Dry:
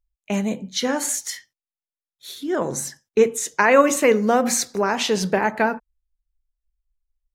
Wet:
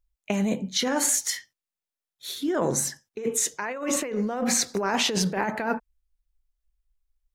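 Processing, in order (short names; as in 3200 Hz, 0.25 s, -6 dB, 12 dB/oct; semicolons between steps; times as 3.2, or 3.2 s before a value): 3.72–4.68 high shelf 7600 Hz -8 dB; negative-ratio compressor -24 dBFS, ratio -1; gain -2 dB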